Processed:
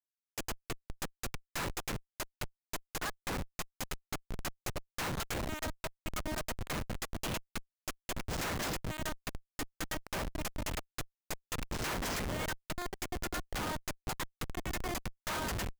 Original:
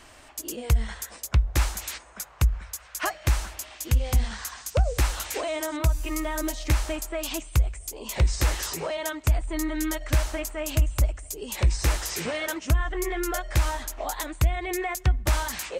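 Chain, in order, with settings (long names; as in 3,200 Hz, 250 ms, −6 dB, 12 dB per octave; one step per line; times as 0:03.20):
high-pass filter 1,100 Hz 12 dB per octave
comparator with hysteresis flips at −30 dBFS
level +1 dB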